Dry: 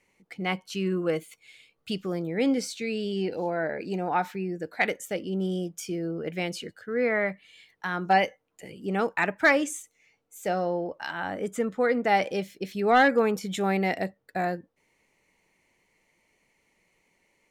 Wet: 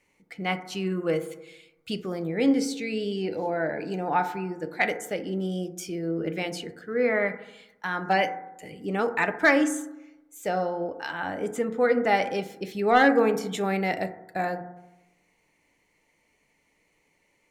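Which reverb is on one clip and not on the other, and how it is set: FDN reverb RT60 0.94 s, low-frequency decay 1.1×, high-frequency decay 0.25×, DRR 8 dB

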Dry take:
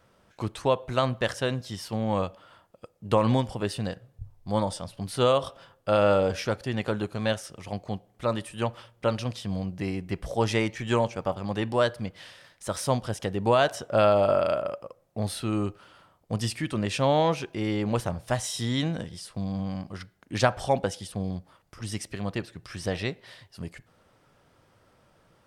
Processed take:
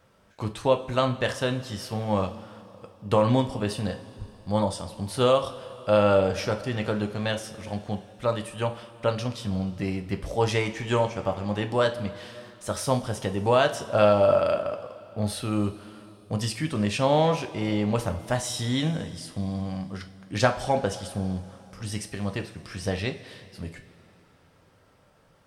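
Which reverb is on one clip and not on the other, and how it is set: two-slope reverb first 0.31 s, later 3.3 s, from -18 dB, DRR 5.5 dB

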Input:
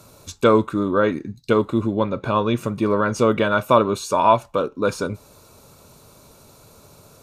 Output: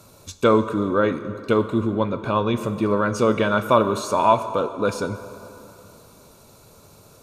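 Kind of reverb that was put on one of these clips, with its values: plate-style reverb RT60 3.1 s, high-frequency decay 0.65×, DRR 11 dB; trim -1.5 dB

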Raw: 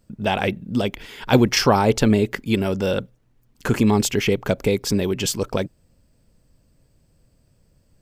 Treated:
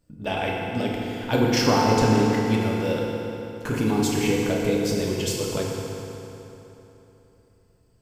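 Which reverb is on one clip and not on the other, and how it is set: FDN reverb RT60 3.4 s, high-frequency decay 0.75×, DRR -3.5 dB; trim -8 dB

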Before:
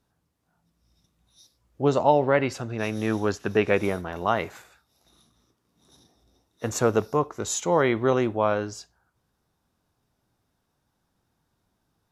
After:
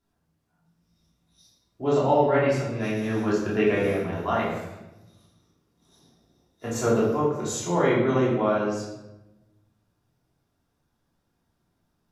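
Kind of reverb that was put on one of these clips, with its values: simulated room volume 420 m³, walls mixed, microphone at 3.1 m; trim -9 dB

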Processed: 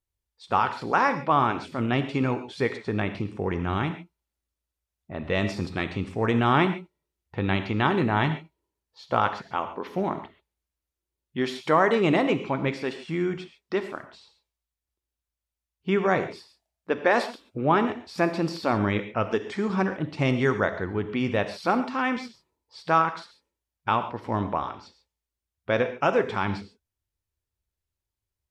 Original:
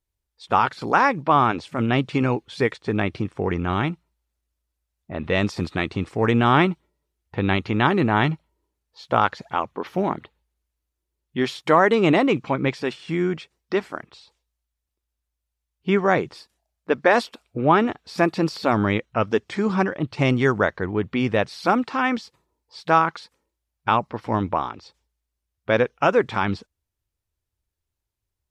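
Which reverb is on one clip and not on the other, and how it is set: gated-style reverb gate 160 ms flat, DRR 8.5 dB; trim -4.5 dB

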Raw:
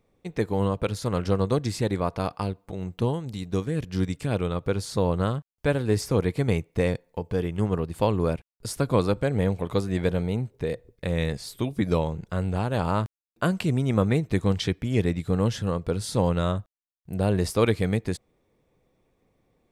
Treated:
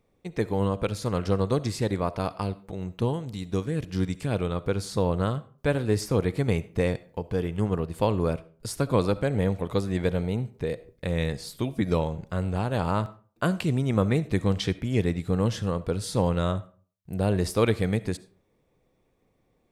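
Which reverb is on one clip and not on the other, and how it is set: algorithmic reverb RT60 0.42 s, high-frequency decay 0.65×, pre-delay 25 ms, DRR 17 dB; trim -1 dB

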